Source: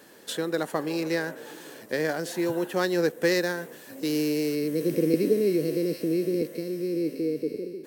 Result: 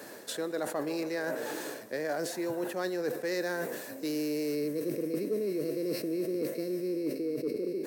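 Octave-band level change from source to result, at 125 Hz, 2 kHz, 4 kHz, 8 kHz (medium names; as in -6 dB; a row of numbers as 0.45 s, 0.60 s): -9.5 dB, -6.5 dB, -6.5 dB, -3.5 dB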